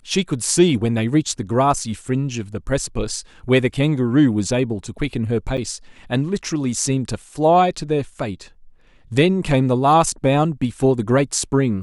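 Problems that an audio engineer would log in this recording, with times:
5.57–5.58 gap 7.4 ms

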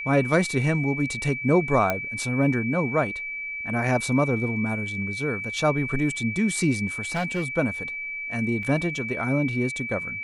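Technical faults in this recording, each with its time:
tone 2300 Hz -30 dBFS
1.9 pop -10 dBFS
7.15–7.45 clipped -21.5 dBFS
8.63 gap 3 ms

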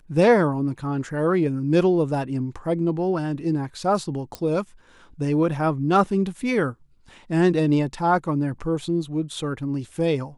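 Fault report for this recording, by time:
4.35 pop -15 dBFS

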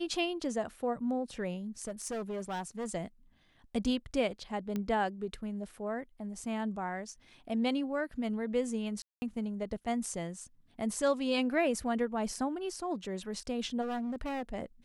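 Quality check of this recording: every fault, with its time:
1.87–2.91 clipped -33 dBFS
4.76 pop -22 dBFS
9.02–9.22 gap 0.2 s
13.81–14.43 clipped -32.5 dBFS

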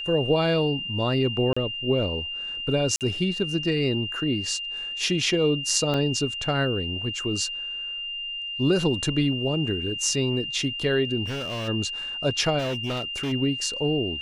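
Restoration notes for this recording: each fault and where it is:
tone 2800 Hz -30 dBFS
1.53–1.56 gap 35 ms
2.96–3.01 gap 48 ms
5.94 gap 2.4 ms
11.25–11.69 clipped -27.5 dBFS
12.58–13.33 clipped -24.5 dBFS

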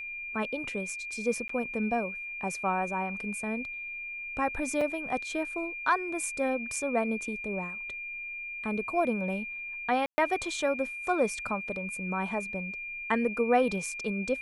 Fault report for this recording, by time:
tone 2400 Hz -36 dBFS
1.48–1.49 gap
4.81 gap 3.7 ms
10.06–10.18 gap 0.12 s

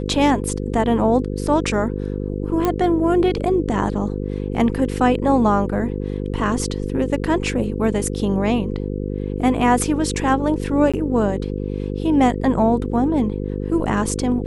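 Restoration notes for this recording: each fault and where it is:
buzz 50 Hz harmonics 10 -25 dBFS
2.65 pop -7 dBFS
10.92–10.94 gap 16 ms

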